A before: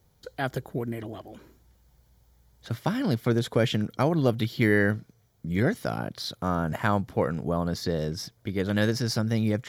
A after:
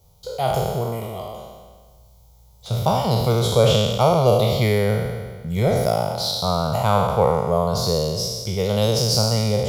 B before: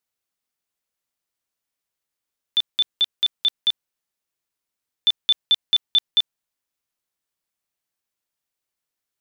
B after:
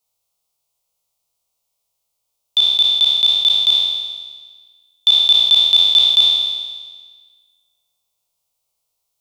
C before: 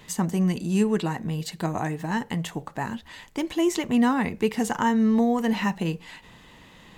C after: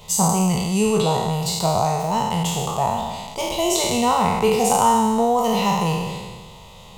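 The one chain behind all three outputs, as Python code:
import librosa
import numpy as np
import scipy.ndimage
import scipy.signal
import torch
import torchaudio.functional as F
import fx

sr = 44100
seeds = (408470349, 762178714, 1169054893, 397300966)

y = fx.spec_trails(x, sr, decay_s=1.54)
y = fx.fixed_phaser(y, sr, hz=700.0, stages=4)
y = y * librosa.db_to_amplitude(8.0)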